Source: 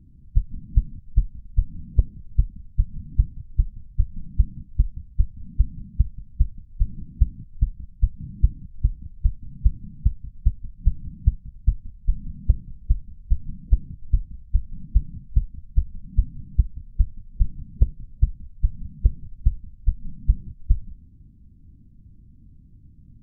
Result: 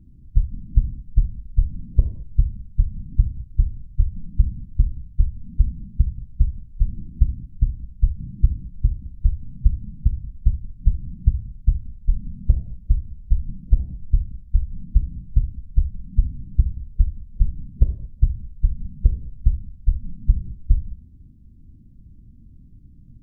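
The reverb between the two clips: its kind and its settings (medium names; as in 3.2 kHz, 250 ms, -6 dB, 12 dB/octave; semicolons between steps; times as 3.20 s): gated-style reverb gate 250 ms falling, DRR 7 dB; trim +1.5 dB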